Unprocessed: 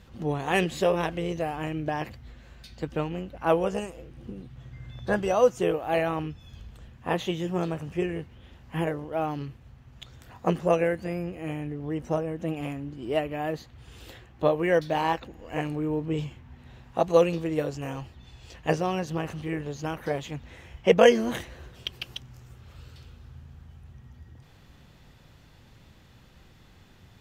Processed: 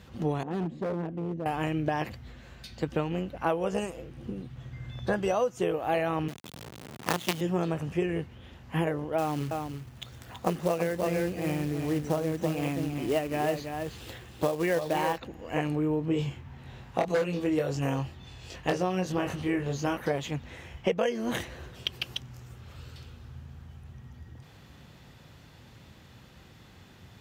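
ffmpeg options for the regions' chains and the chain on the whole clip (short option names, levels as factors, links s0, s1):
-filter_complex "[0:a]asettb=1/sr,asplit=3[s0][s1][s2];[s0]atrim=end=0.434[s3];[s1]atrim=start=0.43:end=1.46,asetpts=PTS-STARTPTS,afade=t=in:d=0.004:c=qsin,afade=t=out:st=1.026:d=0.004:c=qsin,bandpass=f=230:t=q:w=1.6,asoftclip=type=hard:threshold=0.0299[s4];[s2]atrim=start=1.456[s5];[s3][s4]acrossfade=d=0.004:c1=hsin:c2=qsin[s6];[s6][s5]acrossfade=d=0.004:c1=qsin:c2=hsin,asettb=1/sr,asplit=3[s7][s8][s9];[s7]atrim=end=6.284[s10];[s8]atrim=start=6.28:end=7.41,asetpts=PTS-STARTPTS,afade=t=in:d=0.004:c=qsin,afade=t=out:st=1.126:d=0.004:c=qsin,asubboost=boost=10:cutoff=200,acrusher=bits=4:dc=4:mix=0:aa=0.000001,highpass=150[s11];[s9]atrim=start=7.406[s12];[s10][s11]acrossfade=d=0.004:c1=hsin:c2=qsin[s13];[s13][s12]acrossfade=d=0.004:c1=qsin:c2=hsin,asettb=1/sr,asplit=3[s14][s15][s16];[s14]atrim=end=9.184[s17];[s15]atrim=start=9.18:end=15.18,asetpts=PTS-STARTPTS,afade=t=in:d=0.004:c=qsin,afade=t=out:st=5.996:d=0.004:c=qsin,acrusher=bits=4:mode=log:mix=0:aa=0.000001,aecho=1:1:329:0.422,atrim=end_sample=264600[s18];[s16]atrim=start=15.176[s19];[s17][s18]acrossfade=d=0.004:c1=hsin:c2=qsin[s20];[s20][s19]acrossfade=d=0.004:c1=qsin:c2=hsin,asettb=1/sr,asplit=3[s21][s22][s23];[s21]atrim=end=16.094[s24];[s22]atrim=start=16.09:end=19.97,asetpts=PTS-STARTPTS,afade=t=in:d=0.004:c=qsin,afade=t=out:st=3.876:d=0.004:c=qsin,aeval=exprs='0.188*(abs(mod(val(0)/0.188+3,4)-2)-1)':c=same,asplit=2[s25][s26];[s26]adelay=22,volume=0.631[s27];[s25][s27]amix=inputs=2:normalize=0,atrim=end_sample=171108[s28];[s23]atrim=start=19.966[s29];[s24][s28]acrossfade=d=0.004:c1=hsin:c2=qsin[s30];[s30][s29]acrossfade=d=0.004:c1=qsin:c2=hsin,highpass=67,acompressor=threshold=0.0501:ratio=16,volume=1.41"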